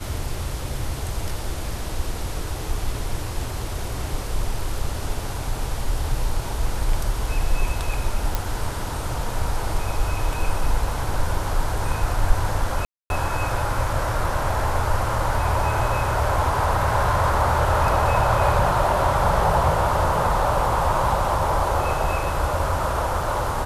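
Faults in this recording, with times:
0:08.35: click
0:12.85–0:13.10: drop-out 251 ms

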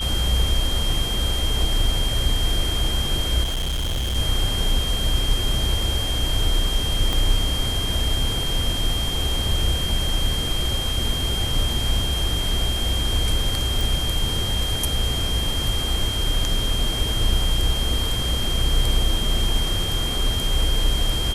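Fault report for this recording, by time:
whistle 3,200 Hz −26 dBFS
0:03.43–0:04.17: clipping −21 dBFS
0:07.13: click
0:13.81: click

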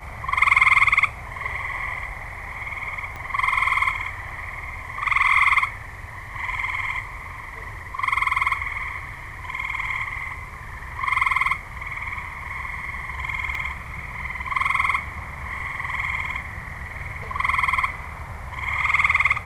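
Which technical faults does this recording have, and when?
0:03.16: click −21 dBFS
0:13.55: drop-out 2.1 ms

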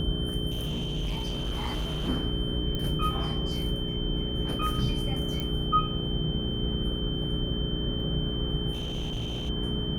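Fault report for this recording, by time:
mains hum 60 Hz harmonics 7 −33 dBFS
whistle 3,100 Hz −35 dBFS
0:00.50–0:02.09: clipping −27 dBFS
0:02.75: click −20 dBFS
0:05.40: click −18 dBFS
0:08.73–0:09.50: clipping −28.5 dBFS

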